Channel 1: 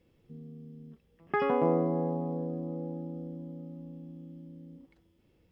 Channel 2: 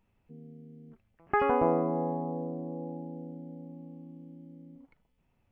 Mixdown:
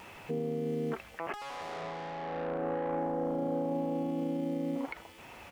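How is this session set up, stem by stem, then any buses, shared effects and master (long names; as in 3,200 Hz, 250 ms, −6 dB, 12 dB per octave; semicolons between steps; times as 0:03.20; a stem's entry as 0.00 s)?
+1.5 dB, 0.00 s, no send, expanding power law on the bin magnitudes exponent 3.4
+1.5 dB, 1.2 ms, polarity flipped, no send, mid-hump overdrive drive 32 dB, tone 2,400 Hz, clips at −13 dBFS; bass and treble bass −9 dB, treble +3 dB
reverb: not used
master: high-shelf EQ 2,800 Hz +5.5 dB; compressor whose output falls as the input rises −28 dBFS, ratio −0.5; brickwall limiter −26 dBFS, peak gain reduction 11 dB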